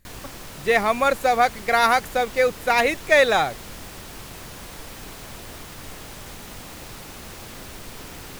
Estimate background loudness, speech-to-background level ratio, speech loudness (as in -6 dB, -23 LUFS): -38.0 LUFS, 18.0 dB, -20.0 LUFS